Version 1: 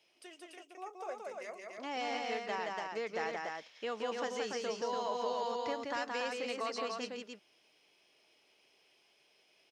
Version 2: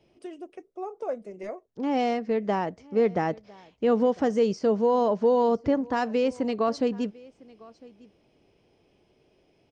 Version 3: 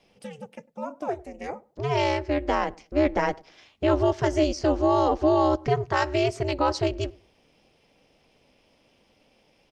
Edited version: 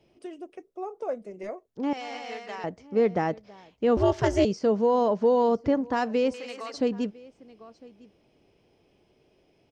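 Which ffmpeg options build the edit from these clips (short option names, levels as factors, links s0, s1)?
-filter_complex "[0:a]asplit=2[s0][s1];[1:a]asplit=4[s2][s3][s4][s5];[s2]atrim=end=1.932[s6];[s0]atrim=start=1.928:end=2.642[s7];[s3]atrim=start=2.638:end=3.972[s8];[2:a]atrim=start=3.968:end=4.452[s9];[s4]atrim=start=4.448:end=6.342[s10];[s1]atrim=start=6.338:end=6.742[s11];[s5]atrim=start=6.738[s12];[s6][s7]acrossfade=d=0.004:c1=hsin:c2=hsin[s13];[s13][s8]acrossfade=d=0.004:c1=hsin:c2=hsin[s14];[s14][s9]acrossfade=d=0.004:c1=hsin:c2=hsin[s15];[s15][s10]acrossfade=d=0.004:c1=hsin:c2=hsin[s16];[s16][s11]acrossfade=d=0.004:c1=hsin:c2=hsin[s17];[s17][s12]acrossfade=d=0.004:c1=hsin:c2=hsin"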